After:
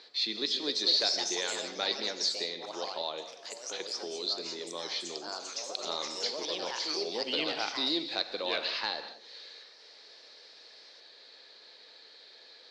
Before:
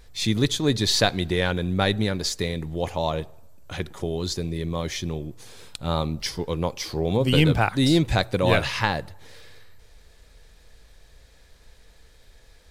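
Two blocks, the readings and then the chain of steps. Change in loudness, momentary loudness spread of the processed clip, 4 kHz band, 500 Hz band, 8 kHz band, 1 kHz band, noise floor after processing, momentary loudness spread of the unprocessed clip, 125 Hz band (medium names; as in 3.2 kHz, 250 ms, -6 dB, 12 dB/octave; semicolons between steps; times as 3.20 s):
-7.5 dB, 22 LU, -1.5 dB, -11.0 dB, -5.0 dB, -10.0 dB, -55 dBFS, 12 LU, -36.5 dB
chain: high-pass 310 Hz 24 dB/octave; hard clipper -13 dBFS, distortion -21 dB; four-pole ladder low-pass 4.6 kHz, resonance 75%; gated-style reverb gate 230 ms flat, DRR 9 dB; ever faster or slower copies 321 ms, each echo +3 st, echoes 3, each echo -6 dB; three bands compressed up and down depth 40%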